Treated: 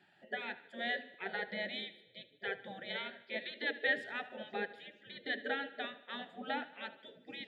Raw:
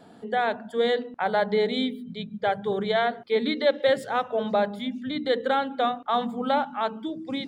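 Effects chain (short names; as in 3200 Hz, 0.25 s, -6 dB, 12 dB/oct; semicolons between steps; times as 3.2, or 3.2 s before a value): vowel filter e; spectral gate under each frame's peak -15 dB weak; thinning echo 76 ms, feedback 60%, high-pass 200 Hz, level -17.5 dB; gain +8 dB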